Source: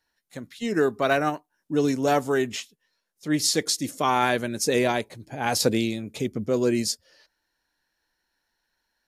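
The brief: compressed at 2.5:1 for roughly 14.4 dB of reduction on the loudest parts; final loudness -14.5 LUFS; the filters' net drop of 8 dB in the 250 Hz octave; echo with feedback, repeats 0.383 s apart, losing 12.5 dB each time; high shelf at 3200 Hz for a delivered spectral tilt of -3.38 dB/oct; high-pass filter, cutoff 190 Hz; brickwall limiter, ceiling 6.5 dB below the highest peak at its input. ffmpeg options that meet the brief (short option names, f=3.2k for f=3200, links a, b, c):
-af "highpass=190,equalizer=f=250:t=o:g=-9,highshelf=f=3.2k:g=-8.5,acompressor=threshold=-42dB:ratio=2.5,alimiter=level_in=6.5dB:limit=-24dB:level=0:latency=1,volume=-6.5dB,aecho=1:1:383|766|1149:0.237|0.0569|0.0137,volume=28dB"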